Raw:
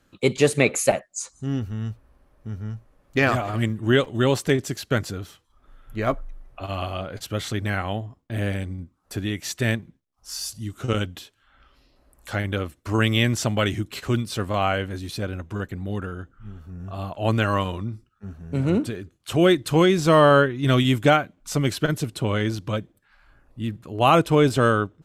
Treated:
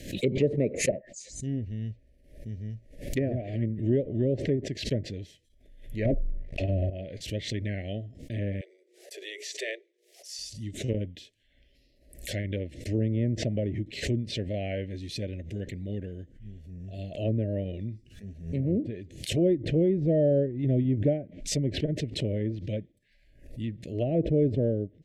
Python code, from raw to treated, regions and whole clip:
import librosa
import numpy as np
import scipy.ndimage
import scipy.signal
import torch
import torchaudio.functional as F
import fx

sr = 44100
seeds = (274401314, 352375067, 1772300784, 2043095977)

y = fx.chain(x, sr, fx.leveller(passes=3),
    fx.peak_eq(hz=720.0, db=-3.5, octaves=0.23), at=(6.05, 6.9))
y = fx.chain(y, sr, fx.steep_highpass(hz=360.0, slope=96),
    fx.high_shelf(hz=12000.0, db=-8.5),
    fx.hum_notches(base_hz=60, count=8), at=(8.61, 10.39))
y = scipy.signal.sosfilt(scipy.signal.ellip(3, 1.0, 40, [620.0, 1900.0], 'bandstop', fs=sr, output='sos'), y)
y = fx.env_lowpass_down(y, sr, base_hz=660.0, full_db=-18.5)
y = fx.pre_swell(y, sr, db_per_s=96.0)
y = y * 10.0 ** (-5.0 / 20.0)